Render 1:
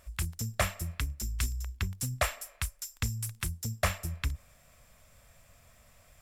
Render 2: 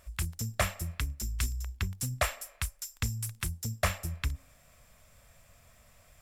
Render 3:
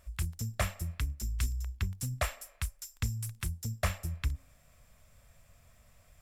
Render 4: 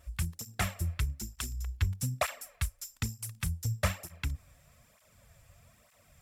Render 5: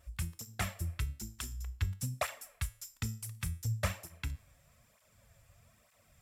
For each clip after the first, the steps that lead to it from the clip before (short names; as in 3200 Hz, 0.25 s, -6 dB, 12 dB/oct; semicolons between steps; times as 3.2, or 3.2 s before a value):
de-hum 269.4 Hz, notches 3
low shelf 200 Hz +5.5 dB; gain -4.5 dB
tape flanging out of phase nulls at 1.1 Hz, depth 5.2 ms; gain +5 dB
resonator 110 Hz, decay 0.46 s, harmonics all, mix 50%; gain +1 dB